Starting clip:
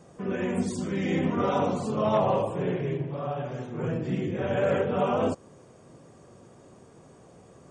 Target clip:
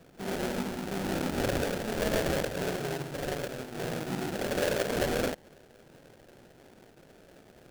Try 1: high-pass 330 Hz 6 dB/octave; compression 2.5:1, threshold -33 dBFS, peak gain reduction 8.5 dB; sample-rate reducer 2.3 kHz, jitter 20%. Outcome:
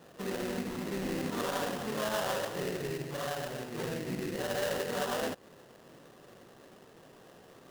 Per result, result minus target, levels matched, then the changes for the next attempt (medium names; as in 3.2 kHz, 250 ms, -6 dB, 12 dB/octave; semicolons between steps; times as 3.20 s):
sample-rate reducer: distortion -13 dB; compression: peak gain reduction +4 dB
change: sample-rate reducer 1.1 kHz, jitter 20%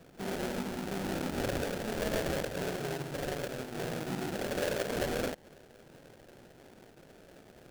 compression: peak gain reduction +4 dB
change: compression 2.5:1, threshold -26.5 dBFS, peak gain reduction 4.5 dB